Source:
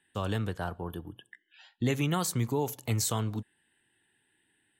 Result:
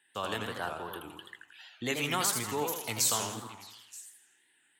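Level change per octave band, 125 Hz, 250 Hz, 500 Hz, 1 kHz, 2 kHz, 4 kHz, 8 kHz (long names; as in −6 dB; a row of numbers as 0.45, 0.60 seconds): −12.5, −7.0, −2.0, +2.0, +4.5, +5.0, +5.0 decibels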